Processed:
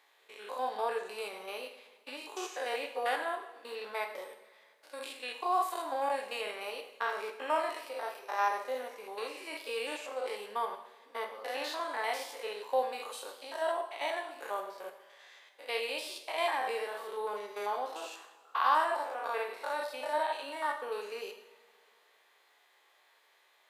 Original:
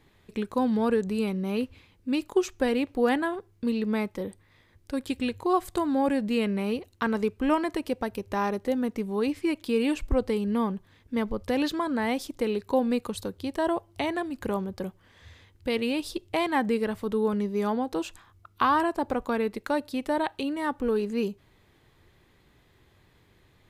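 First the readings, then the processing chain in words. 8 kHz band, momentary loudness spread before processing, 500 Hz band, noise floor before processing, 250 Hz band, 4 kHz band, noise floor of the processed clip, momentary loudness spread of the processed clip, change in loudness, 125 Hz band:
−2.5 dB, 8 LU, −8.0 dB, −62 dBFS, −26.0 dB, −2.5 dB, −67 dBFS, 13 LU, −7.5 dB, below −35 dB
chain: spectrum averaged block by block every 100 ms
high-pass filter 590 Hz 24 dB per octave
coupled-rooms reverb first 0.66 s, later 2.5 s, DRR 4 dB

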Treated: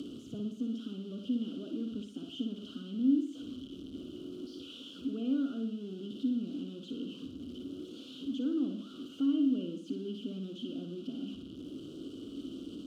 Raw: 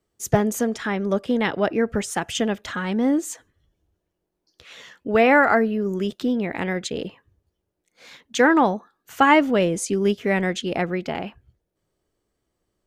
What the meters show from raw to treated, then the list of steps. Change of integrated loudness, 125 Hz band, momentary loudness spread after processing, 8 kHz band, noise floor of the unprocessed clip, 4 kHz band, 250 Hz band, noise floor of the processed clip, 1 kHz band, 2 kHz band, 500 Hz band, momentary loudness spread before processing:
−15.5 dB, −16.5 dB, 14 LU, below −25 dB, −78 dBFS, −13.0 dB, −9.0 dB, −49 dBFS, below −35 dB, below −35 dB, −22.5 dB, 14 LU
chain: converter with a step at zero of −18 dBFS
de-essing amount 45%
elliptic band-stop filter 1,400–2,800 Hz, stop band 40 dB
upward compression, threshold −20 dBFS
surface crackle 13 per second −33 dBFS
formant filter i
on a send: flutter between parallel walls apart 9.9 metres, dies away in 0.53 s
on the sum: level −7.5 dB

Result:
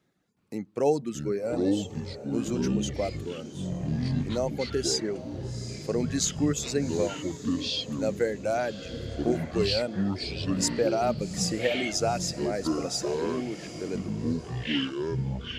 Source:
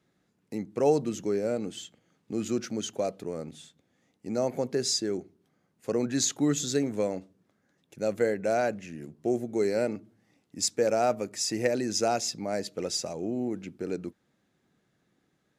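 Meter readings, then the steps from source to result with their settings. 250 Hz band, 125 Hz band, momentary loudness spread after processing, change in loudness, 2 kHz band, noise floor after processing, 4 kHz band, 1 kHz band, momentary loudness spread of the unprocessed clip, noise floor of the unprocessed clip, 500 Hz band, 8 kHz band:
+3.0 dB, +8.5 dB, 9 LU, +0.5 dB, +3.0 dB, −42 dBFS, +3.5 dB, 0.0 dB, 13 LU, −74 dBFS, 0.0 dB, 0.0 dB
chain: reverb reduction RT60 1.1 s
feedback delay with all-pass diffusion 784 ms, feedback 44%, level −13.5 dB
delay with pitch and tempo change per echo 367 ms, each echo −7 semitones, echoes 3

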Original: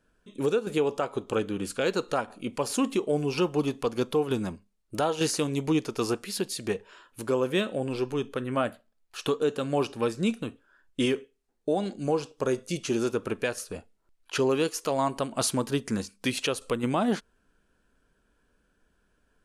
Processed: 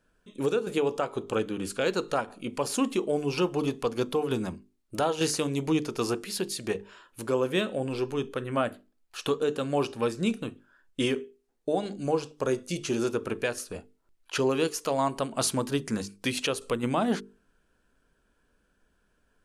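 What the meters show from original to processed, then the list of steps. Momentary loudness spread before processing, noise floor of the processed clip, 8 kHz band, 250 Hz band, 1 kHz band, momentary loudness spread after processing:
8 LU, −71 dBFS, 0.0 dB, −1.0 dB, 0.0 dB, 9 LU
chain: mains-hum notches 50/100/150/200/250/300/350/400/450 Hz

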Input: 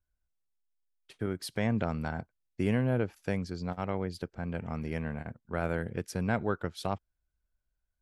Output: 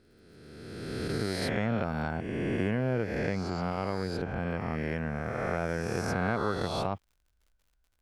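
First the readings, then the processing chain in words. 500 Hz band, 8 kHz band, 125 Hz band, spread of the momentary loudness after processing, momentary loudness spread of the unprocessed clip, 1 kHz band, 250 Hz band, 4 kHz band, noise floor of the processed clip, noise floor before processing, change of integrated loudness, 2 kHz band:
+3.0 dB, +2.5 dB, +1.0 dB, 6 LU, 8 LU, +4.0 dB, +1.0 dB, +5.5 dB, −73 dBFS, −83 dBFS, +2.0 dB, +4.0 dB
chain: peak hold with a rise ahead of every peak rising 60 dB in 1.93 s
high-shelf EQ 7,600 Hz −11.5 dB
downward compressor 2 to 1, threshold −33 dBFS, peak gain reduction 7 dB
surface crackle 77 per second −60 dBFS
level +3.5 dB

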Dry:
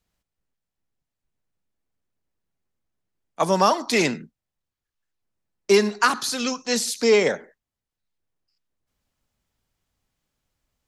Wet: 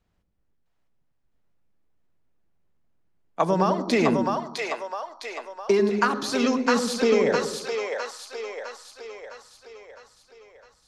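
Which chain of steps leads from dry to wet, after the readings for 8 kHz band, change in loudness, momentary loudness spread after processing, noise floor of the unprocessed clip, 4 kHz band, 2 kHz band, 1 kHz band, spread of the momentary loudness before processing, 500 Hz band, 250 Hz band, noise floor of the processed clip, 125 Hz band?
−7.0 dB, −3.5 dB, 18 LU, below −85 dBFS, −4.5 dB, −2.5 dB, −1.0 dB, 8 LU, −0.5 dB, +2.5 dB, −70 dBFS, +2.0 dB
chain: low-pass filter 1,600 Hz 6 dB per octave
downward compressor, threshold −24 dBFS, peak gain reduction 11 dB
on a send: echo with a time of its own for lows and highs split 490 Hz, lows 96 ms, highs 658 ms, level −3 dB
on the sum: level +5.5 dB

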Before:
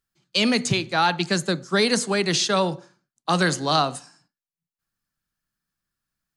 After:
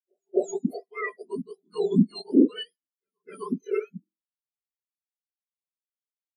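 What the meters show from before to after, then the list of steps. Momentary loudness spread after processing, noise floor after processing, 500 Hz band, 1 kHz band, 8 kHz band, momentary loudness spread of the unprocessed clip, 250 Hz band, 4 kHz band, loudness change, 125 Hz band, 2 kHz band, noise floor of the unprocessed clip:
16 LU, below −85 dBFS, −3.5 dB, −18.5 dB, below −15 dB, 7 LU, +0.5 dB, −18.0 dB, −5.0 dB, −6.5 dB, −15.0 dB, below −85 dBFS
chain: frequency axis turned over on the octave scale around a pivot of 1,300 Hz
echo ahead of the sound 260 ms −19.5 dB
every bin expanded away from the loudest bin 2.5 to 1

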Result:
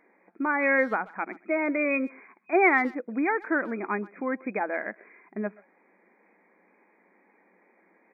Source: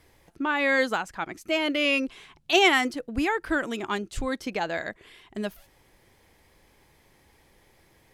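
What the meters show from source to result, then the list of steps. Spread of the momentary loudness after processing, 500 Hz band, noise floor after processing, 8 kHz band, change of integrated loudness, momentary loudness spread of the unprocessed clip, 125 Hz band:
14 LU, 0.0 dB, −64 dBFS, below −30 dB, −1.0 dB, 15 LU, can't be measured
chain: brick-wall band-pass 180–2,500 Hz
far-end echo of a speakerphone 130 ms, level −22 dB
tape wow and flutter 16 cents

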